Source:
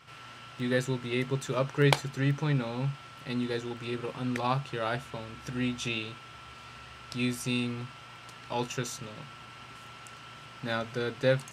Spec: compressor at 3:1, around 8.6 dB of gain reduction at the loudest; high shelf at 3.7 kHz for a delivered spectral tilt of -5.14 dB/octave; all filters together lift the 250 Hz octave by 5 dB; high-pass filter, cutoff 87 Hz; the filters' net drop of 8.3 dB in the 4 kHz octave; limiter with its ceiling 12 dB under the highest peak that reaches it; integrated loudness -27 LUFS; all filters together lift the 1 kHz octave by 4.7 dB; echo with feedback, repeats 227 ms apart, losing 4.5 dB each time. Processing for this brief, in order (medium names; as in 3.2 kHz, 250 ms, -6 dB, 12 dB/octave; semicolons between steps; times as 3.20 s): high-pass 87 Hz; peaking EQ 250 Hz +5.5 dB; peaking EQ 1 kHz +6.5 dB; treble shelf 3.7 kHz -4.5 dB; peaking EQ 4 kHz -8.5 dB; compression 3:1, threshold -27 dBFS; peak limiter -24.5 dBFS; feedback delay 227 ms, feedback 60%, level -4.5 dB; trim +7.5 dB